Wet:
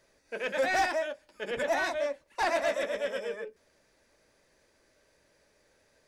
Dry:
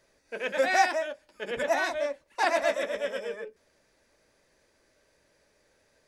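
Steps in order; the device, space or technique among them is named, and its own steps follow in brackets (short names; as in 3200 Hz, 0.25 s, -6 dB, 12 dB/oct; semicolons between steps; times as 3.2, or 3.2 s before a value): saturation between pre-emphasis and de-emphasis (high shelf 3300 Hz +9.5 dB; soft clip -20 dBFS, distortion -12 dB; high shelf 3300 Hz -9.5 dB)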